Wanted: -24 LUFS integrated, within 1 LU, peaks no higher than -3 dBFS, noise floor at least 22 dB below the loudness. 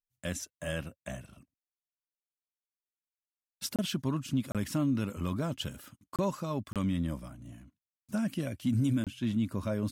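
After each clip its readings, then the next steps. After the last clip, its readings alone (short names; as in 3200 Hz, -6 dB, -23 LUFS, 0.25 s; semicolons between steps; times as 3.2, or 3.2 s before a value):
dropouts 5; longest dropout 27 ms; loudness -33.5 LUFS; peak -20.5 dBFS; loudness target -24.0 LUFS
-> interpolate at 3.76/4.52/6.16/6.73/9.04, 27 ms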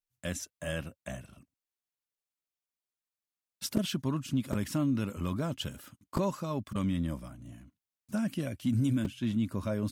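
dropouts 0; loudness -33.5 LUFS; peak -13.5 dBFS; loudness target -24.0 LUFS
-> gain +9.5 dB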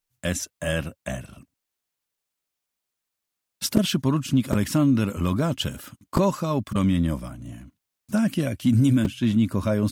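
loudness -24.0 LUFS; peak -4.0 dBFS; noise floor -84 dBFS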